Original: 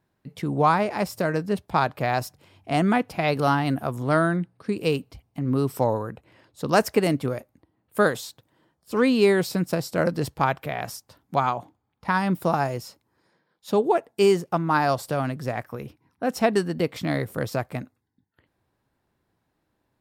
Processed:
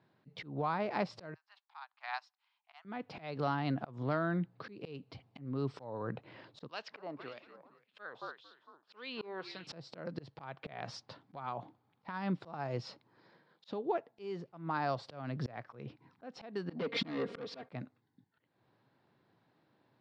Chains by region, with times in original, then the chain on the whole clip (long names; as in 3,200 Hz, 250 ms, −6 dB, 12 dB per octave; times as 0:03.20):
0:01.34–0:02.85: Butterworth high-pass 830 Hz 48 dB per octave + high-shelf EQ 10,000 Hz +3.5 dB + expander for the loud parts 2.5 to 1, over −35 dBFS
0:06.67–0:09.67: parametric band 2,100 Hz −7.5 dB 1.1 octaves + echo with shifted repeats 227 ms, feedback 42%, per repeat −54 Hz, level −17 dB + auto-filter band-pass sine 1.8 Hz 920–3,100 Hz
0:16.70–0:17.69: low shelf with overshoot 520 Hz +8 dB, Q 1.5 + comb filter 4.3 ms, depth 84% + mid-hump overdrive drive 26 dB, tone 3,900 Hz, clips at −3 dBFS
whole clip: elliptic band-pass filter 120–4,400 Hz, stop band 50 dB; downward compressor 6 to 1, threshold −33 dBFS; volume swells 294 ms; level +3 dB